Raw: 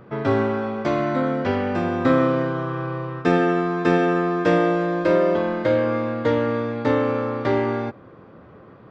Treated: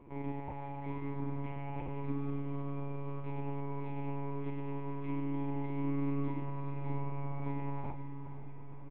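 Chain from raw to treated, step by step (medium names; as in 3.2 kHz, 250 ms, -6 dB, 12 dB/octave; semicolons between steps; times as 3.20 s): bass shelf 170 Hz -7 dB; in parallel at -0.5 dB: compressor with a negative ratio -29 dBFS; on the sum: peak limiter -16.5 dBFS, peak gain reduction 10 dB; vowel filter u; doubling 42 ms -3.5 dB; delay 135 ms -10 dB; monotone LPC vocoder at 8 kHz 140 Hz; on a send: echo that smears into a reverb 500 ms, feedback 59%, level -10 dB; on the sum: trim -4 dB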